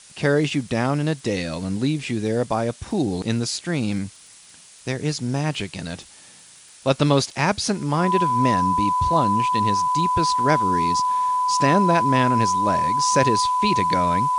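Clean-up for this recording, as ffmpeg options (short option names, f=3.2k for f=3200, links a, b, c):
-af "adeclick=t=4,bandreject=f=1k:w=30,afftdn=nr=20:nf=-47"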